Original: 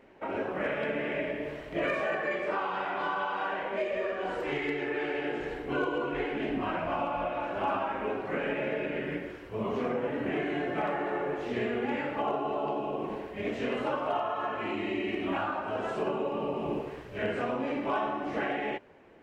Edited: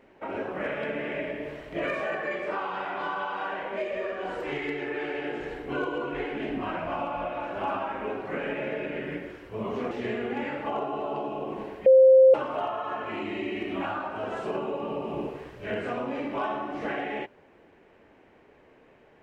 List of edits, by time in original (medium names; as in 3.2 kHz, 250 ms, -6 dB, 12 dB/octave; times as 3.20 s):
9.91–11.43 s: delete
13.38–13.86 s: bleep 525 Hz -11.5 dBFS